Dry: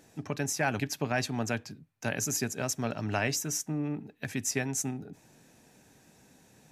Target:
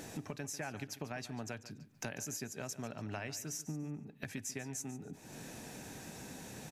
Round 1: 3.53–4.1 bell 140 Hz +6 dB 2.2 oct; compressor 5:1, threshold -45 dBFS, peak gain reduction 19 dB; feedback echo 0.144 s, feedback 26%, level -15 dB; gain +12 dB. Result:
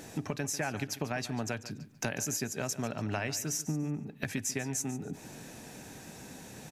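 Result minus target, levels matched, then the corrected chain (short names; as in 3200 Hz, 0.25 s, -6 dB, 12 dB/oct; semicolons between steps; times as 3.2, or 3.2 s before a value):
compressor: peak gain reduction -8 dB
3.53–4.1 bell 140 Hz +6 dB 2.2 oct; compressor 5:1, threshold -55 dBFS, peak gain reduction 27 dB; feedback echo 0.144 s, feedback 26%, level -15 dB; gain +12 dB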